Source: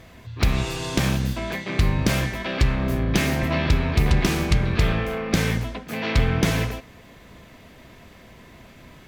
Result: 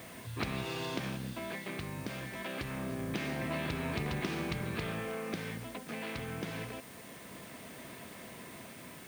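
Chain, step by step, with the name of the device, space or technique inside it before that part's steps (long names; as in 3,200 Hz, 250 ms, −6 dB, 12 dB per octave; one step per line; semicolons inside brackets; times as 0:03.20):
medium wave at night (band-pass filter 150–4,400 Hz; downward compressor 5 to 1, threshold −33 dBFS, peak gain reduction 14.5 dB; amplitude tremolo 0.25 Hz, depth 45%; steady tone 9,000 Hz −61 dBFS; white noise bed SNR 17 dB)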